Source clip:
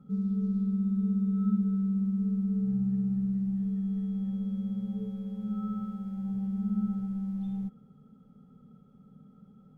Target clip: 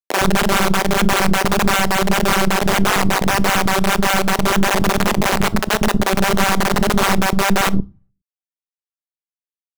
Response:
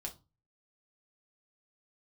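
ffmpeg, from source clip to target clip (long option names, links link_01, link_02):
-filter_complex "[0:a]lowpass=1000,lowshelf=frequency=250:gain=-3.5,bandreject=frequency=60:width_type=h:width=6,bandreject=frequency=120:width_type=h:width=6,bandreject=frequency=180:width_type=h:width=6,bandreject=frequency=240:width_type=h:width=6,bandreject=frequency=300:width_type=h:width=6,bandreject=frequency=360:width_type=h:width=6,acompressor=threshold=-37dB:ratio=16,flanger=delay=15.5:depth=7:speed=1.7,aeval=exprs='0.0178*(cos(1*acos(clip(val(0)/0.0178,-1,1)))-cos(1*PI/2))+0.00141*(cos(3*acos(clip(val(0)/0.0178,-1,1)))-cos(3*PI/2))+0.000126*(cos(4*acos(clip(val(0)/0.0178,-1,1)))-cos(4*PI/2))+0.00562*(cos(6*acos(clip(val(0)/0.0178,-1,1)))-cos(6*PI/2))+0.000447*(cos(8*acos(clip(val(0)/0.0178,-1,1)))-cos(8*PI/2))':channel_layout=same,acrusher=bits=3:dc=4:mix=0:aa=0.000001,acrossover=split=300[link_01][link_02];[link_01]adelay=110[link_03];[link_03][link_02]amix=inputs=2:normalize=0,asplit=2[link_04][link_05];[1:a]atrim=start_sample=2205[link_06];[link_05][link_06]afir=irnorm=-1:irlink=0,volume=-14.5dB[link_07];[link_04][link_07]amix=inputs=2:normalize=0,alimiter=level_in=34dB:limit=-1dB:release=50:level=0:latency=1,volume=-3.5dB"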